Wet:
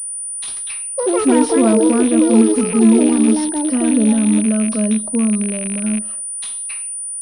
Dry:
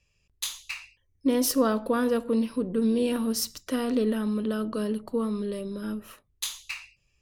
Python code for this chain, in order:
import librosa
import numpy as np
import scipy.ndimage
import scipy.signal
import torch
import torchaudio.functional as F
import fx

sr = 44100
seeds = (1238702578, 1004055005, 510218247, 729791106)

y = fx.rattle_buzz(x, sr, strikes_db=-41.0, level_db=-20.0)
y = fx.small_body(y, sr, hz=(220.0, 630.0), ring_ms=45, db=14)
y = fx.echo_pitch(y, sr, ms=176, semitones=6, count=2, db_per_echo=-3.0)
y = fx.pwm(y, sr, carrier_hz=9400.0)